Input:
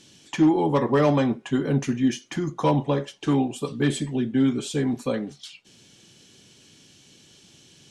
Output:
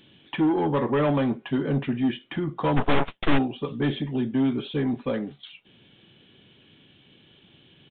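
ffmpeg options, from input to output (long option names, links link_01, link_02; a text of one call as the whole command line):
ffmpeg -i in.wav -filter_complex "[0:a]asoftclip=type=tanh:threshold=-16.5dB,asplit=3[link_01][link_02][link_03];[link_01]afade=type=out:start_time=2.76:duration=0.02[link_04];[link_02]aeval=exprs='0.141*(cos(1*acos(clip(val(0)/0.141,-1,1)))-cos(1*PI/2))+0.00891*(cos(3*acos(clip(val(0)/0.141,-1,1)))-cos(3*PI/2))+0.0631*(cos(4*acos(clip(val(0)/0.141,-1,1)))-cos(4*PI/2))+0.02*(cos(7*acos(clip(val(0)/0.141,-1,1)))-cos(7*PI/2))+0.0562*(cos(8*acos(clip(val(0)/0.141,-1,1)))-cos(8*PI/2))':channel_layout=same,afade=type=in:start_time=2.76:duration=0.02,afade=type=out:start_time=3.37:duration=0.02[link_05];[link_03]afade=type=in:start_time=3.37:duration=0.02[link_06];[link_04][link_05][link_06]amix=inputs=3:normalize=0,aresample=8000,aresample=44100" out.wav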